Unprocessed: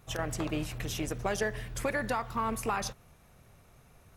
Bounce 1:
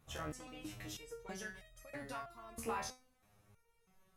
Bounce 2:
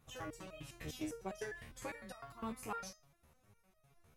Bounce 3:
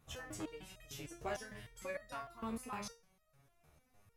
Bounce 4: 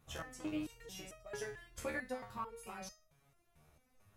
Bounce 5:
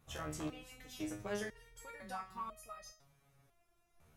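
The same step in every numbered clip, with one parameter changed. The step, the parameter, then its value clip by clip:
step-sequenced resonator, speed: 3.1, 9.9, 6.6, 4.5, 2 Hertz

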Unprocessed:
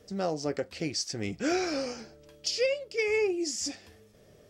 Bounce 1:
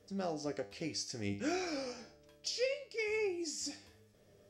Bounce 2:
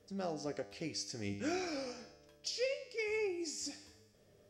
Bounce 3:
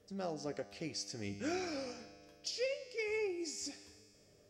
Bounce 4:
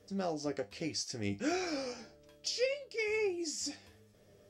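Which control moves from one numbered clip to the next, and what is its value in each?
tuned comb filter, decay: 0.46, 0.98, 2.2, 0.2 seconds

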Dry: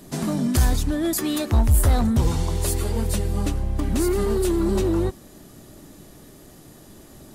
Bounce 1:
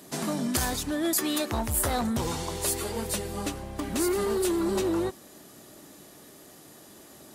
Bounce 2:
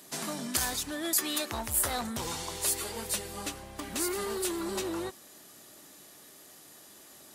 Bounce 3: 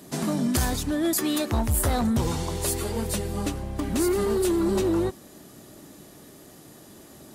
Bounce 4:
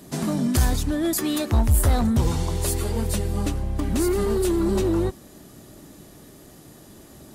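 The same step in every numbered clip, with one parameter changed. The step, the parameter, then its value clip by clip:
high-pass filter, corner frequency: 440, 1,400, 170, 41 Hertz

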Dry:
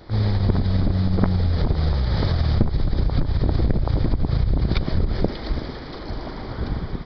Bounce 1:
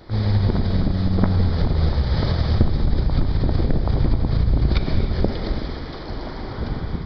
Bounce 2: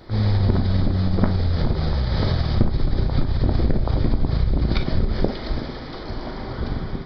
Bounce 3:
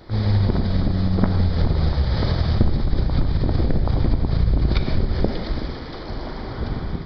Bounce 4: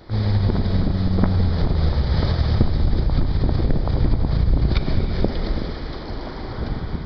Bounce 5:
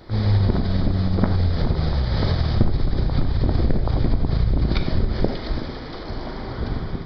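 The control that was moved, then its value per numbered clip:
reverb whose tail is shaped and stops, gate: 330, 80, 200, 490, 120 milliseconds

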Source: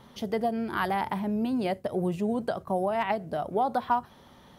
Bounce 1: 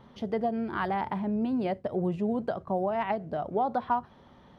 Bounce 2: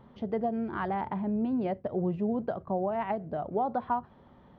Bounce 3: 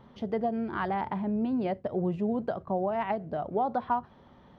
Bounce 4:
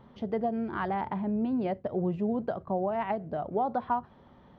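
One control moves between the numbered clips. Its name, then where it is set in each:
head-to-tape spacing loss, at 10 kHz: 20, 45, 29, 37 decibels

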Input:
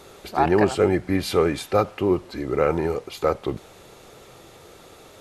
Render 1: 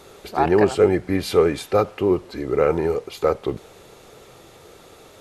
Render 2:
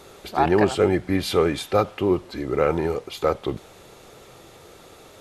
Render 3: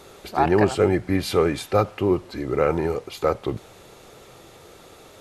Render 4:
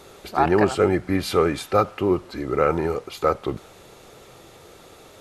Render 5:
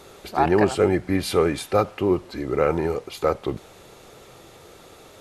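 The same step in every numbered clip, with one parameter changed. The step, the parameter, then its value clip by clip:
dynamic equaliser, frequency: 440, 3,400, 110, 1,300, 9,700 Hertz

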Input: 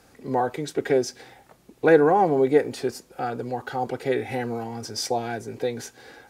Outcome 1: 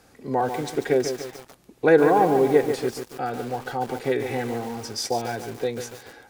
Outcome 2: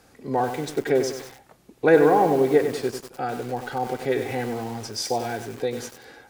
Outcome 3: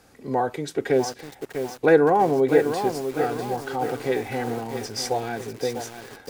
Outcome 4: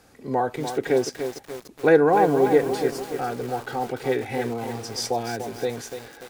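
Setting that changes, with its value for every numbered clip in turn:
feedback echo at a low word length, delay time: 144, 96, 648, 292 milliseconds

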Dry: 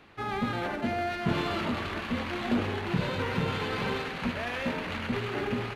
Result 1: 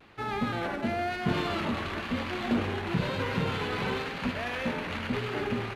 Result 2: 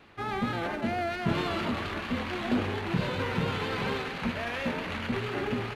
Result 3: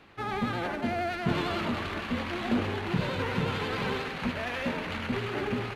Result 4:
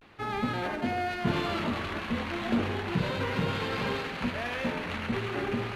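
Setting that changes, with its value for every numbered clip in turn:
pitch vibrato, speed: 1, 4.4, 11, 0.34 Hertz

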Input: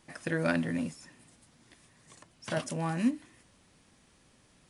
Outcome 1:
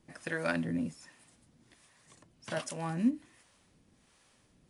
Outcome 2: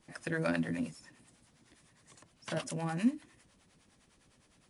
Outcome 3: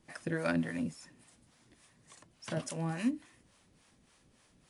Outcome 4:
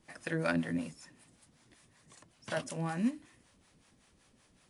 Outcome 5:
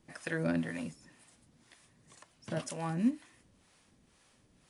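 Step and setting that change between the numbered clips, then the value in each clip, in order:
two-band tremolo in antiphase, speed: 1.3, 9.8, 3.5, 5.3, 2 Hertz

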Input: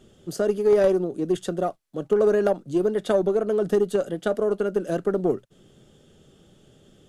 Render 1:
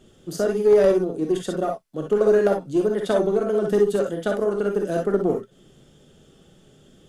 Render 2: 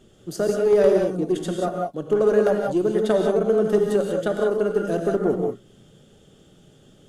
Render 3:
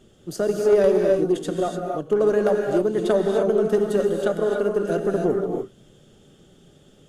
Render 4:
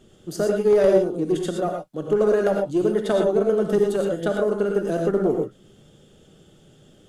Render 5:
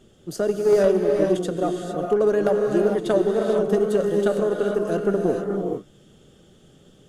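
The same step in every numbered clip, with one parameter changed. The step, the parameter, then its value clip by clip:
reverb whose tail is shaped and stops, gate: 80, 210, 320, 140, 480 milliseconds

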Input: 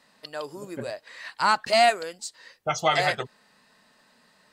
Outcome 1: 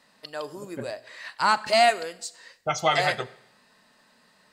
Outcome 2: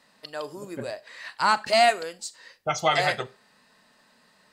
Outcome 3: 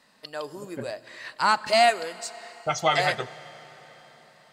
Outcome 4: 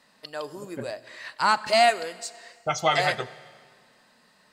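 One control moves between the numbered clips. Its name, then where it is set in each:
four-comb reverb, RT60: 0.75, 0.3, 4.5, 1.8 seconds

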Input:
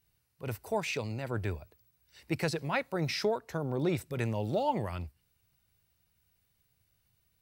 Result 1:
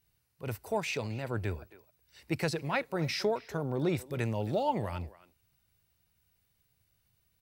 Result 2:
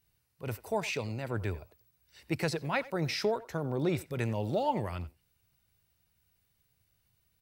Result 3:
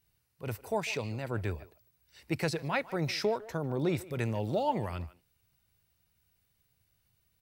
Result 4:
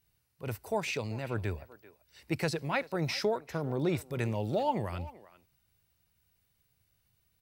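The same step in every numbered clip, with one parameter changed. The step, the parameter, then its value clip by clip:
far-end echo of a speakerphone, delay time: 270, 90, 150, 390 milliseconds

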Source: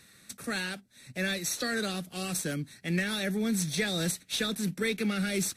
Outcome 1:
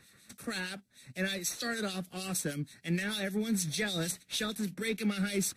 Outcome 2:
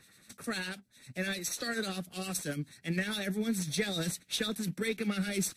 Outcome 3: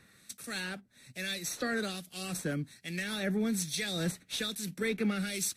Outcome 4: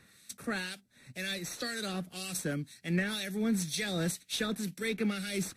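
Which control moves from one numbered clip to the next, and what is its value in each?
two-band tremolo in antiphase, speed: 6.5, 10, 1.2, 2 Hertz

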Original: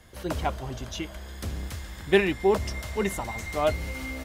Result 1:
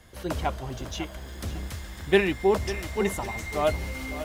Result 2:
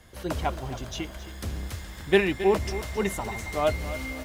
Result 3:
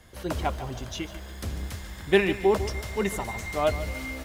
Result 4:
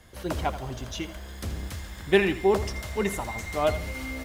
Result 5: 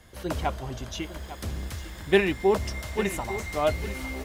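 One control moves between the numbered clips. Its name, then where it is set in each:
feedback echo at a low word length, delay time: 550, 269, 148, 81, 852 milliseconds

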